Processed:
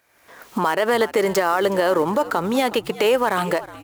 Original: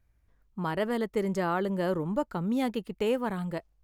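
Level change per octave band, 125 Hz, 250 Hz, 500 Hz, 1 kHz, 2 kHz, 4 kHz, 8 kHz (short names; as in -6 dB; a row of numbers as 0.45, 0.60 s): +1.5, +4.5, +11.0, +13.0, +14.0, +15.0, +17.5 dB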